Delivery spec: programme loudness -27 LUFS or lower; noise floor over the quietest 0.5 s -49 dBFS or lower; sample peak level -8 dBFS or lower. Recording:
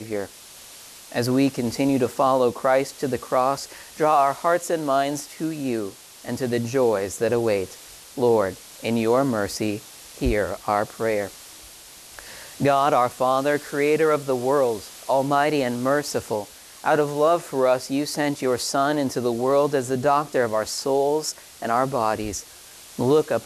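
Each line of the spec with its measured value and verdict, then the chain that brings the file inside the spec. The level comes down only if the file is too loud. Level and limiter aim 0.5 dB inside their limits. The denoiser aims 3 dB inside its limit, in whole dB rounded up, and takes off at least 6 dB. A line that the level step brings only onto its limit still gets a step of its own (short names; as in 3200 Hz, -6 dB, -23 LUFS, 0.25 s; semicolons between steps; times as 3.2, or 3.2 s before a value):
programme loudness -22.5 LUFS: fail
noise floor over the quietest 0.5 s -45 dBFS: fail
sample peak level -7.5 dBFS: fail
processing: gain -5 dB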